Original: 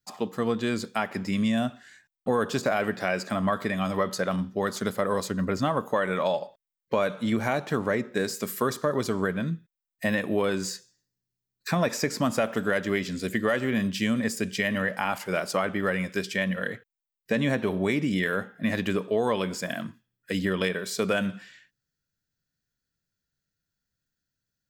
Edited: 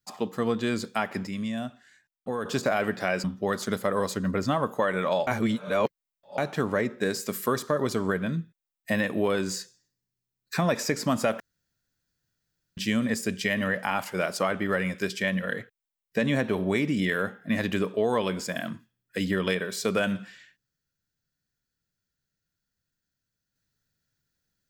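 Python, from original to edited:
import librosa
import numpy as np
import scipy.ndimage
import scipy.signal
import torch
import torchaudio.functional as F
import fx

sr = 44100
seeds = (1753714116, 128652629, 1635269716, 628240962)

y = fx.edit(x, sr, fx.clip_gain(start_s=1.27, length_s=1.18, db=-6.5),
    fx.cut(start_s=3.24, length_s=1.14),
    fx.reverse_span(start_s=6.41, length_s=1.11),
    fx.room_tone_fill(start_s=12.54, length_s=1.37), tone=tone)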